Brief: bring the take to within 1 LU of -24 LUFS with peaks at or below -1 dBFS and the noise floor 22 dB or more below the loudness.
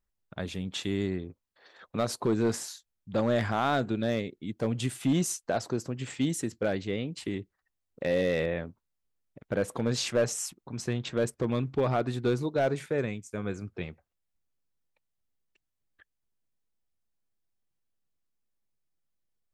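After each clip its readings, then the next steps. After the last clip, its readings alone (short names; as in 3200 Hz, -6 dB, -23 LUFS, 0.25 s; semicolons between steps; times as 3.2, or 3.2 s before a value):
clipped 0.4%; flat tops at -19.0 dBFS; loudness -30.5 LUFS; peak -19.0 dBFS; loudness target -24.0 LUFS
-> clip repair -19 dBFS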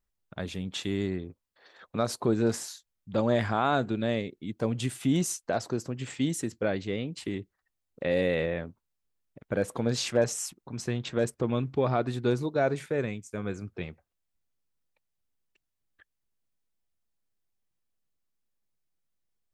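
clipped 0.0%; loudness -30.0 LUFS; peak -12.5 dBFS; loudness target -24.0 LUFS
-> gain +6 dB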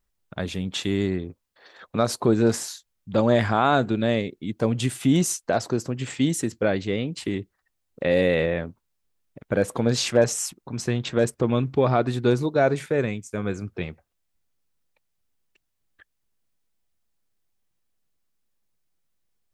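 loudness -24.0 LUFS; peak -6.5 dBFS; noise floor -76 dBFS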